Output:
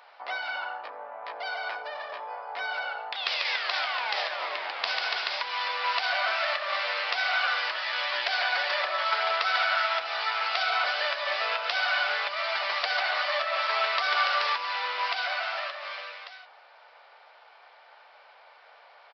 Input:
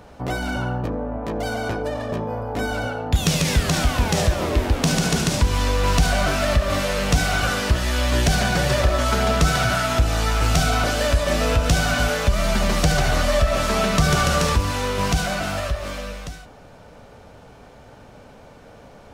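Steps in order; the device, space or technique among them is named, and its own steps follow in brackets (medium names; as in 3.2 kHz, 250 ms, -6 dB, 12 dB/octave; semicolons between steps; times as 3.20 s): musical greeting card (resampled via 11.025 kHz; high-pass 760 Hz 24 dB/octave; peaking EQ 2.1 kHz +4 dB 0.31 oct); trim -2.5 dB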